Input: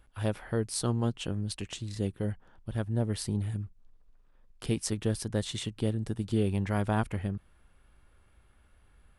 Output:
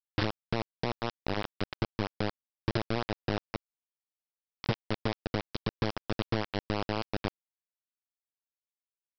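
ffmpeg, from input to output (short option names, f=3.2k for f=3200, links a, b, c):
-af "equalizer=f=110:t=o:w=0.59:g=10.5,acompressor=threshold=-32dB:ratio=20,aresample=11025,acrusher=bits=4:mix=0:aa=0.000001,aresample=44100,volume=4dB"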